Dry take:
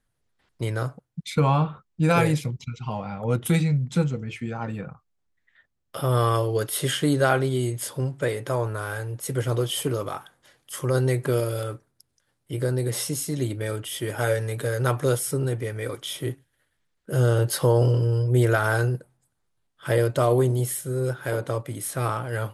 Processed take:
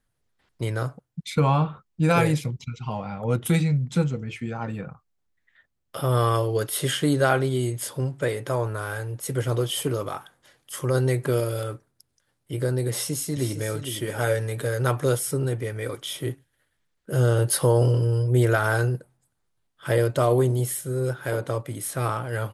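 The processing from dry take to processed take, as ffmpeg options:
ffmpeg -i in.wav -filter_complex "[0:a]asplit=2[link_01][link_02];[link_02]afade=type=in:start_time=12.9:duration=0.01,afade=type=out:start_time=13.73:duration=0.01,aecho=0:1:460|920:0.354813|0.053222[link_03];[link_01][link_03]amix=inputs=2:normalize=0,asettb=1/sr,asplit=3[link_04][link_05][link_06];[link_04]atrim=end=17.384[link_07];[link_05]atrim=start=17.38:end=18.31,asetpts=PTS-STARTPTS,afade=type=in:duration=0.004:curve=qsin,afade=type=out:start_time=0.926:duration=0.004:curve=qsin,equalizer=frequency=9700:width_type=o:width=0.24:gain=9.5[link_08];[link_06]atrim=start=18.306[link_09];[link_07][link_08]acrossfade=duration=0.004:curve1=hsin:curve2=qsin[link_10];[link_10][link_09]acrossfade=duration=0.004:curve1=qsin:curve2=hsin" out.wav

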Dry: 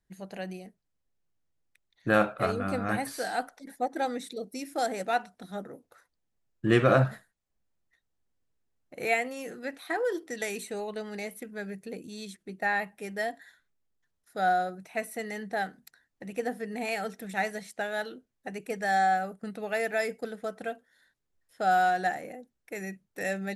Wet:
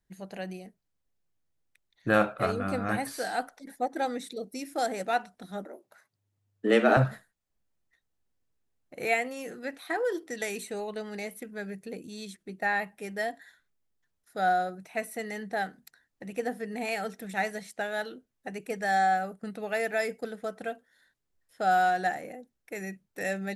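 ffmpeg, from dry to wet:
ffmpeg -i in.wav -filter_complex "[0:a]asettb=1/sr,asplit=3[link_01][link_02][link_03];[link_01]atrim=end=5.654[link_04];[link_02]atrim=start=5.65:end=6.97,asetpts=PTS-STARTPTS,afade=type=in:duration=0.004:curve=qsin,afade=type=out:start_time=1.316:duration=0.004:curve=qsin,afreqshift=100[link_05];[link_03]atrim=start=6.966[link_06];[link_04][link_05]acrossfade=duration=0.004:curve1=hsin:curve2=qsin[link_07];[link_07][link_06]acrossfade=duration=0.004:curve1=qsin:curve2=hsin" out.wav

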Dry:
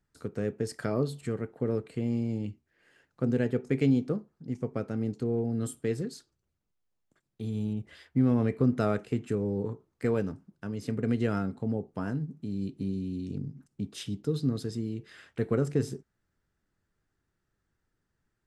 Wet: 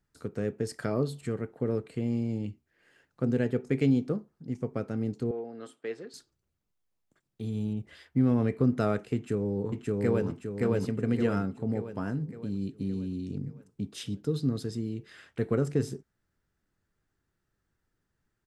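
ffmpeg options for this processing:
ffmpeg -i in.wav -filter_complex "[0:a]asettb=1/sr,asplit=3[link_01][link_02][link_03];[link_01]atrim=end=5.314[link_04];[link_02]atrim=start=5.31:end=6.14,asetpts=PTS-STARTPTS,afade=type=in:duration=0.004:curve=qsin,afade=type=out:start_time=0.826:duration=0.004:curve=qsin,highpass=510,lowpass=3400[link_05];[link_03]atrim=start=6.136[link_06];[link_04][link_05]acrossfade=duration=0.004:curve1=hsin:curve2=qsin[link_07];[link_07][link_06]acrossfade=duration=0.004:curve1=qsin:curve2=hsin,asplit=2[link_08][link_09];[link_09]afade=type=in:start_time=9.15:duration=0.01,afade=type=out:start_time=10.28:duration=0.01,aecho=0:1:570|1140|1710|2280|2850|3420|3990:0.944061|0.47203|0.236015|0.118008|0.0590038|0.0295019|0.014751[link_10];[link_08][link_10]amix=inputs=2:normalize=0" out.wav

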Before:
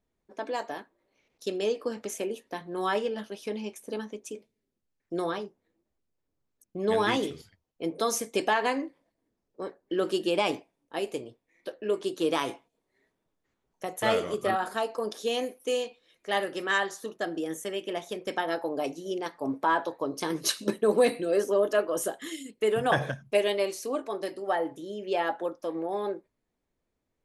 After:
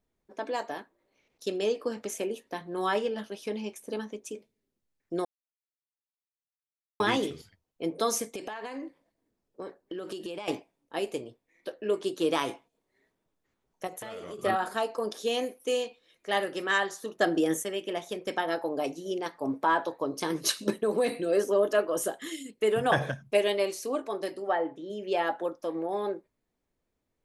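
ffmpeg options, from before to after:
ffmpeg -i in.wav -filter_complex "[0:a]asettb=1/sr,asplit=3[link_01][link_02][link_03];[link_01]atrim=end=8.274[link_04];[link_02]atrim=start=8.27:end=10.48,asetpts=PTS-STARTPTS,afade=type=in:duration=0.004:curve=qsin,afade=type=out:start_time=2.206:duration=0.004:curve=qsin,acompressor=threshold=-33dB:ratio=16:attack=3.2:release=140:knee=1:detection=peak[link_05];[link_03]atrim=start=10.476[link_06];[link_04][link_05]acrossfade=duration=0.004:curve1=hsin:curve2=qsin[link_07];[link_07][link_06]acrossfade=duration=0.004:curve1=qsin:curve2=hsin,asettb=1/sr,asplit=3[link_08][link_09][link_10];[link_08]atrim=end=13.874[link_11];[link_09]atrim=start=13.87:end=14.39,asetpts=PTS-STARTPTS,afade=type=in:duration=0.004:curve=qsin,afade=type=out:start_time=0.516:duration=0.004:curve=qsin,acompressor=threshold=-36dB:ratio=12:attack=3.2:release=140:knee=1:detection=peak[link_12];[link_10]atrim=start=14.386[link_13];[link_11][link_12]acrossfade=duration=0.004:curve1=hsin:curve2=qsin[link_14];[link_14][link_13]acrossfade=duration=0.004:curve1=qsin:curve2=hsin,asettb=1/sr,asplit=3[link_15][link_16][link_17];[link_15]atrim=end=17.184[link_18];[link_16]atrim=start=17.18:end=17.63,asetpts=PTS-STARTPTS,afade=type=in:duration=0.004:curve=qsin,afade=type=out:start_time=0.446:duration=0.004:curve=qsin,acontrast=74[link_19];[link_17]atrim=start=17.626[link_20];[link_18][link_19]acrossfade=duration=0.004:curve1=hsin:curve2=qsin[link_21];[link_21][link_20]acrossfade=duration=0.004:curve1=qsin:curve2=hsin,asettb=1/sr,asplit=3[link_22][link_23][link_24];[link_22]atrim=end=20.714[link_25];[link_23]atrim=start=20.71:end=21.22,asetpts=PTS-STARTPTS,afade=type=in:duration=0.004:curve=qsin,afade=type=out:start_time=0.506:duration=0.004:curve=qsin,acompressor=threshold=-25dB:ratio=2:attack=3.2:release=140:knee=1:detection=peak[link_26];[link_24]atrim=start=21.216[link_27];[link_25][link_26]acrossfade=duration=0.004:curve1=hsin:curve2=qsin[link_28];[link_28][link_27]acrossfade=duration=0.004:curve1=qsin:curve2=hsin,asplit=3[link_29][link_30][link_31];[link_29]afade=type=out:start_time=24.47:duration=0.02[link_32];[link_30]highpass=160,lowpass=3200,afade=type=in:start_time=24.47:duration=0.02,afade=type=out:start_time=24.89:duration=0.02[link_33];[link_31]afade=type=in:start_time=24.89:duration=0.02[link_34];[link_32][link_33][link_34]amix=inputs=3:normalize=0,asplit=3[link_35][link_36][link_37];[link_35]atrim=end=5.25,asetpts=PTS-STARTPTS,afade=type=out:start_time=5.246:duration=0.004:curve=hsin[link_38];[link_36]atrim=start=5.25:end=7,asetpts=PTS-STARTPTS,volume=0[link_39];[link_37]atrim=start=7,asetpts=PTS-STARTPTS,afade=type=in:duration=0.004:curve=hsin[link_40];[link_38][link_39][link_40]concat=n=3:v=0:a=1" out.wav

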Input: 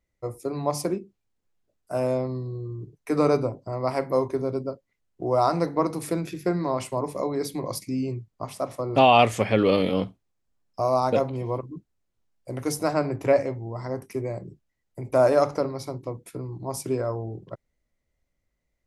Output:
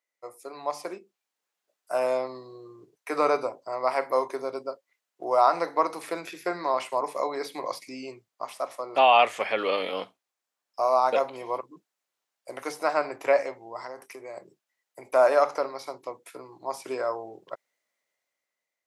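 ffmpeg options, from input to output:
ffmpeg -i in.wav -filter_complex "[0:a]asettb=1/sr,asplit=3[link_01][link_02][link_03];[link_01]atrim=end=13.804[link_04];[link_02]atrim=start=13.8:end=14.37,asetpts=PTS-STARTPTS,afade=type=in:duration=0.004:curve=qsin,afade=type=out:start_time=0.566:duration=0.004:curve=qsin,acompressor=threshold=-31dB:ratio=6:attack=3.2:release=140:knee=1:detection=peak[link_05];[link_03]atrim=start=14.366[link_06];[link_04][link_05]acrossfade=duration=0.004:curve1=hsin:curve2=qsin[link_07];[link_07][link_06]acrossfade=duration=0.004:curve1=qsin:curve2=hsin,dynaudnorm=framelen=440:gausssize=5:maxgain=8dB,highpass=730,acrossover=split=3500[link_08][link_09];[link_09]acompressor=threshold=-44dB:ratio=4:attack=1:release=60[link_10];[link_08][link_10]amix=inputs=2:normalize=0,volume=-1.5dB" out.wav

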